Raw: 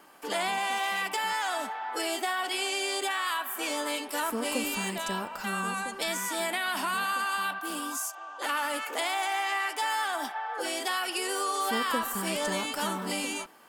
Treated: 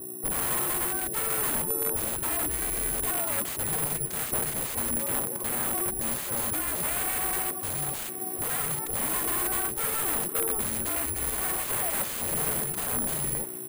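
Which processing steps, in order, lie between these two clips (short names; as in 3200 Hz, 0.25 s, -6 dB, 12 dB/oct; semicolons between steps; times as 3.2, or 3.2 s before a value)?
de-hum 137.8 Hz, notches 10; reverb removal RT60 0.54 s; EQ curve 780 Hz 0 dB, 2100 Hz -11 dB, 3500 Hz -27 dB, 13000 Hz +9 dB; in parallel at -2.5 dB: limiter -26.5 dBFS, peak gain reduction 10 dB; on the sum: hum 60 Hz, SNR 14 dB; frequency shift -430 Hz; wrapped overs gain 26.5 dB; air absorption 140 m; on a send: feedback echo 0.973 s, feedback 55%, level -18 dB; on the sum: careless resampling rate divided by 4×, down filtered, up zero stuff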